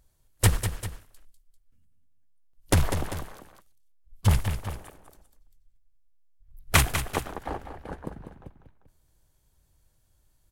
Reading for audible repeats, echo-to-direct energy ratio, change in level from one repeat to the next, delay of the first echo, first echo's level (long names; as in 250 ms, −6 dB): 2, −8.0 dB, −5.5 dB, 197 ms, −9.0 dB